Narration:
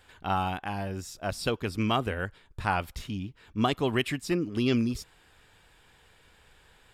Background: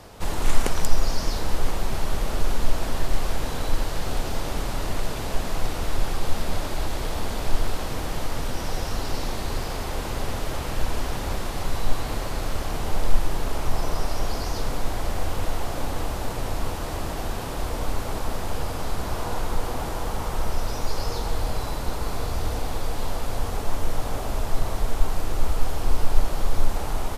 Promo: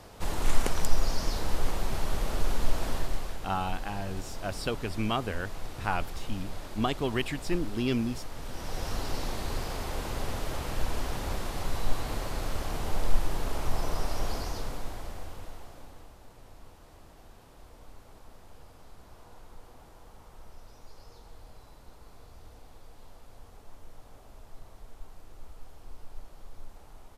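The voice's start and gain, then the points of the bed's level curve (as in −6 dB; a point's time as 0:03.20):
3.20 s, −3.0 dB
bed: 0:02.93 −4.5 dB
0:03.40 −13 dB
0:08.34 −13 dB
0:08.89 −5 dB
0:14.33 −5 dB
0:16.16 −24 dB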